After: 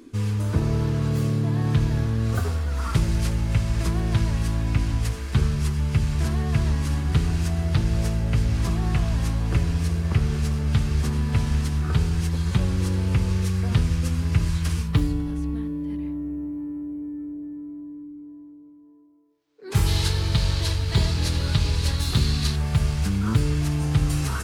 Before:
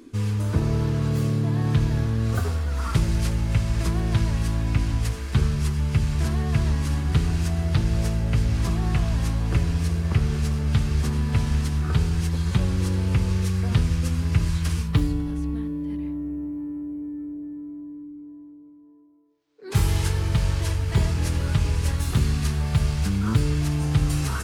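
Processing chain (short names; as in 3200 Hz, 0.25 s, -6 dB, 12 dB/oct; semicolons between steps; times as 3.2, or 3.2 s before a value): 19.86–22.56 bell 4100 Hz +12 dB 0.64 oct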